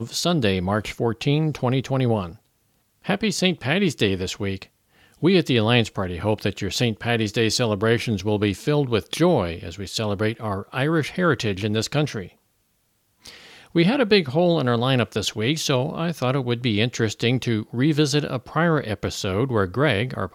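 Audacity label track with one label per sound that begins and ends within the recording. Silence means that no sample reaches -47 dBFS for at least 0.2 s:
3.020000	4.670000	sound
4.960000	12.330000	sound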